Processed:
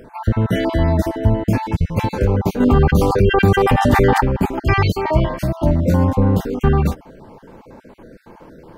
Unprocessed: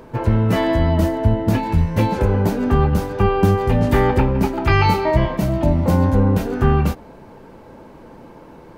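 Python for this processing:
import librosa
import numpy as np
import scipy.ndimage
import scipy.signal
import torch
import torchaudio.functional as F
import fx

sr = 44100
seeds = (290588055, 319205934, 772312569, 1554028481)

y = fx.spec_dropout(x, sr, seeds[0], share_pct=34)
y = fx.env_flatten(y, sr, amount_pct=70, at=(2.6, 4.21))
y = F.gain(torch.from_numpy(y), 1.0).numpy()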